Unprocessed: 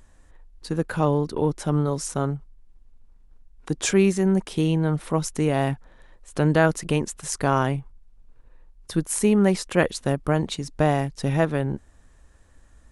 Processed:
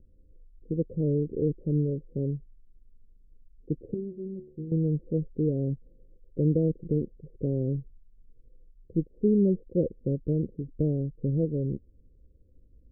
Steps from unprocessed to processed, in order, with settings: Chebyshev low-pass 520 Hz, order 6; 3.94–4.72 s: feedback comb 74 Hz, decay 0.5 s, harmonics all, mix 90%; trim -3 dB

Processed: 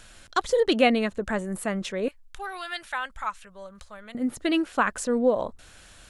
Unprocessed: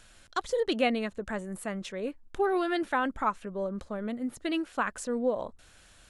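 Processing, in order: 2.08–4.15 s: amplifier tone stack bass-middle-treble 10-0-10; trim +6.5 dB

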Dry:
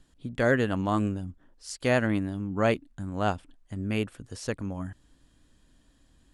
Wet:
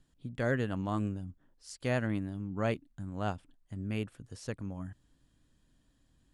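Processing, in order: peaking EQ 130 Hz +5.5 dB 1.2 oct; trim -8.5 dB

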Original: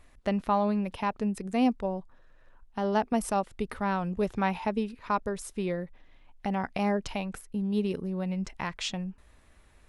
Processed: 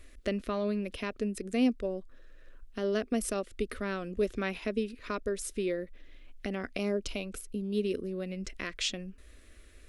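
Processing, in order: 6.77–7.75 s: peaking EQ 1.8 kHz -10.5 dB 0.36 oct; in parallel at 0 dB: compression, threshold -41 dBFS, peak gain reduction 19.5 dB; on the sum: static phaser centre 360 Hz, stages 4

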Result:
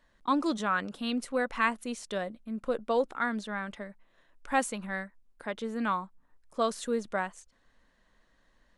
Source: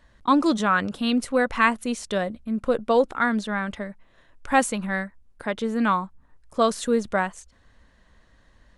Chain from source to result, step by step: peaking EQ 75 Hz -14 dB 1.3 oct; trim -7.5 dB

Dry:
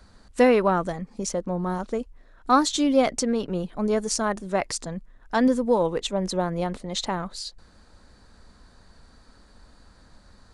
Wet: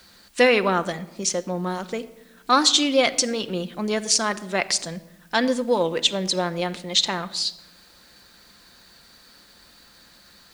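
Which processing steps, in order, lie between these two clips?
frequency weighting D; in parallel at -10 dB: word length cut 8-bit, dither triangular; on the sum: reverberation RT60 0.95 s, pre-delay 6 ms, DRR 10.5 dB; trim -2.5 dB

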